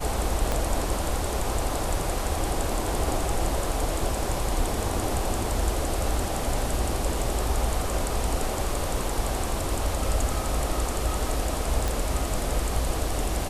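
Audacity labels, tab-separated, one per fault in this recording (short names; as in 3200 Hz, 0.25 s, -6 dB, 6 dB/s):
0.520000	0.520000	pop -11 dBFS
11.880000	11.880000	pop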